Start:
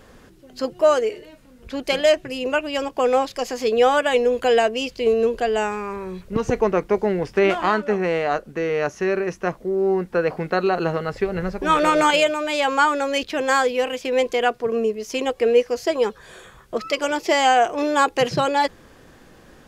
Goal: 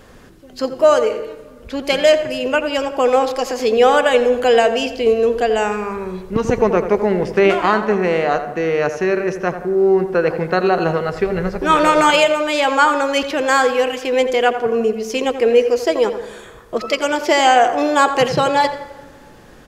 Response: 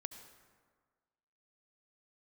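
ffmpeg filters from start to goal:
-filter_complex "[0:a]asplit=2[s0][s1];[s1]adelay=86,lowpass=f=2300:p=1,volume=0.316,asplit=2[s2][s3];[s3]adelay=86,lowpass=f=2300:p=1,volume=0.5,asplit=2[s4][s5];[s5]adelay=86,lowpass=f=2300:p=1,volume=0.5,asplit=2[s6][s7];[s7]adelay=86,lowpass=f=2300:p=1,volume=0.5,asplit=2[s8][s9];[s9]adelay=86,lowpass=f=2300:p=1,volume=0.5[s10];[s0][s2][s4][s6][s8][s10]amix=inputs=6:normalize=0,asplit=2[s11][s12];[1:a]atrim=start_sample=2205[s13];[s12][s13]afir=irnorm=-1:irlink=0,volume=0.891[s14];[s11][s14]amix=inputs=2:normalize=0"

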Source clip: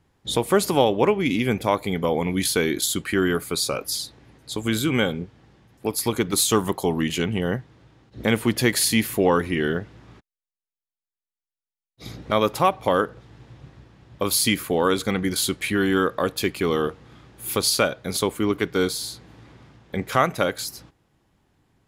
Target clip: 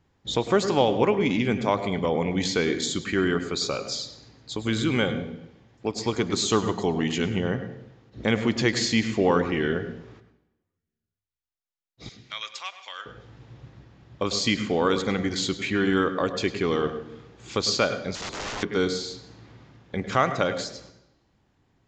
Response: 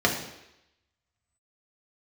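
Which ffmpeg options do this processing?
-filter_complex "[0:a]asettb=1/sr,asplit=3[s0][s1][s2];[s0]atrim=end=12.094[s3];[s1]atrim=start=12.09:end=13.06,asetpts=PTS-STARTPTS,afade=t=in:d=0.004:c=qsin,afade=t=out:st=0.966:d=0.004:c=qsin,asuperpass=centerf=5100:order=4:qfactor=0.64[s4];[s2]atrim=start=13.056[s5];[s3][s4]acrossfade=d=0.004:c1=hsin:c2=qsin[s6];[s6][s5]acrossfade=d=0.004:c1=qsin:c2=hsin,asplit=2[s7][s8];[1:a]atrim=start_sample=2205,adelay=101[s9];[s8][s9]afir=irnorm=-1:irlink=0,volume=0.0562[s10];[s7][s10]amix=inputs=2:normalize=0,asettb=1/sr,asplit=3[s11][s12][s13];[s11]atrim=end=18.154[s14];[s12]atrim=start=18.15:end=18.63,asetpts=PTS-STARTPTS,afade=t=in:d=0.004:c=qsin,afade=t=out:st=0.476:d=0.004:c=qsin,aeval=exprs='(mod(17.8*val(0)+1,2)-1)/17.8':c=same[s15];[s13]atrim=start=18.626[s16];[s14][s15]acrossfade=d=0.004:c1=hsin:c2=qsin[s17];[s17][s16]acrossfade=d=0.004:c1=qsin:c2=hsin,aresample=16000,aresample=44100,volume=0.75"

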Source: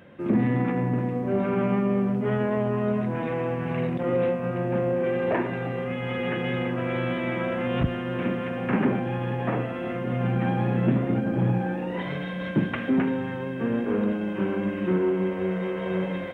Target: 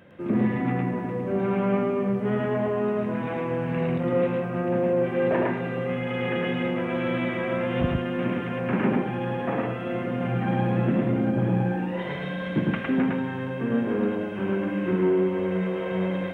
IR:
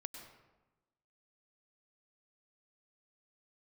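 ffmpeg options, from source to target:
-filter_complex "[0:a]asplit=2[s0][s1];[1:a]atrim=start_sample=2205,atrim=end_sample=3528,adelay=108[s2];[s1][s2]afir=irnorm=-1:irlink=0,volume=1.5[s3];[s0][s3]amix=inputs=2:normalize=0,volume=0.794"

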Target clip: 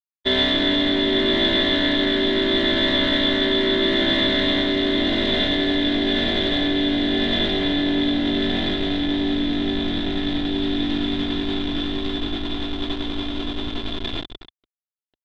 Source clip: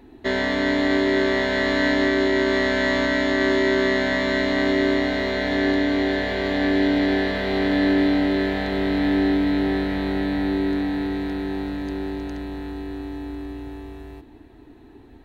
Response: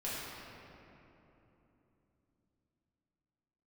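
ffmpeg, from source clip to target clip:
-filter_complex "[0:a]aemphasis=mode=reproduction:type=bsi,bandreject=f=246:t=h:w=4,bandreject=f=492:t=h:w=4,bandreject=f=738:t=h:w=4,bandreject=f=984:t=h:w=4,bandreject=f=1230:t=h:w=4,asplit=5[s0][s1][s2][s3][s4];[s1]adelay=283,afreqshift=-54,volume=0.562[s5];[s2]adelay=566,afreqshift=-108,volume=0.186[s6];[s3]adelay=849,afreqshift=-162,volume=0.061[s7];[s4]adelay=1132,afreqshift=-216,volume=0.0202[s8];[s0][s5][s6][s7][s8]amix=inputs=5:normalize=0,aeval=exprs='val(0)*gte(abs(val(0)),0.0473)':c=same,aecho=1:1:2.9:0.4,asoftclip=type=tanh:threshold=0.596,areverse,acompressor=threshold=0.0891:ratio=12,areverse,lowpass=f=3500:t=q:w=15,equalizer=f=60:w=1.5:g=-10,agate=range=0.0224:threshold=0.0631:ratio=3:detection=peak,volume=1.5"

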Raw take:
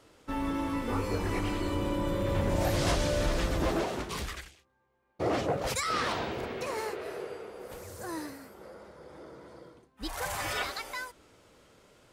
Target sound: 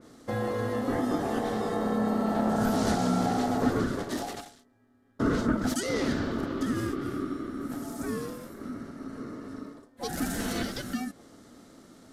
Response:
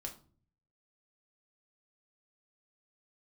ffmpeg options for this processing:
-filter_complex "[0:a]aeval=exprs='val(0)*sin(2*PI*770*n/s)':c=same,equalizer=f=100:t=o:w=0.67:g=4,equalizer=f=250:t=o:w=0.67:g=11,equalizer=f=1000:t=o:w=0.67:g=-10,equalizer=f=2500:t=o:w=0.67:g=-12,asplit=2[s0][s1];[s1]acompressor=threshold=0.00891:ratio=6,volume=1.26[s2];[s0][s2]amix=inputs=2:normalize=0,aresample=32000,aresample=44100,adynamicequalizer=threshold=0.00251:dfrequency=3000:dqfactor=0.7:tfrequency=3000:tqfactor=0.7:attack=5:release=100:ratio=0.375:range=1.5:mode=cutabove:tftype=highshelf,volume=1.33"

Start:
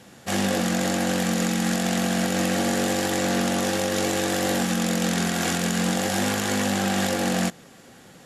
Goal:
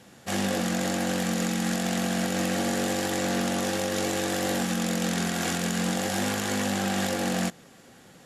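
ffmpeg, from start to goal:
-af "asoftclip=type=hard:threshold=0.188,volume=0.668"

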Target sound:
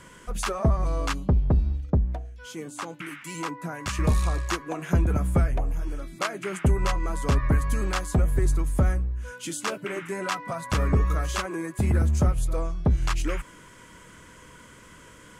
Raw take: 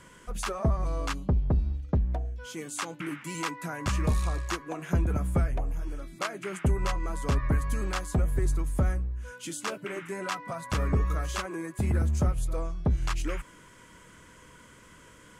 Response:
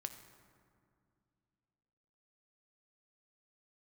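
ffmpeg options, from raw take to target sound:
-filter_complex "[0:a]asettb=1/sr,asplit=3[s0][s1][s2];[s0]atrim=end=1.904[s3];[s1]atrim=start=1.9:end=3.99,asetpts=PTS-STARTPTS,afade=t=in:d=0.004:c=qsin,afade=t=out:st=2.086:d=0.004:c=qsin,acrossover=split=1200[s4][s5];[s4]aeval=exprs='val(0)*(1-0.7/2+0.7/2*cos(2*PI*1.2*n/s))':c=same[s6];[s5]aeval=exprs='val(0)*(1-0.7/2-0.7/2*cos(2*PI*1.2*n/s))':c=same[s7];[s6][s7]amix=inputs=2:normalize=0[s8];[s2]atrim=start=3.986[s9];[s3][s8]acrossfade=d=0.004:c1=hsin:c2=qsin[s10];[s10][s9]acrossfade=d=0.004:c1=qsin:c2=hsin,volume=1.58"

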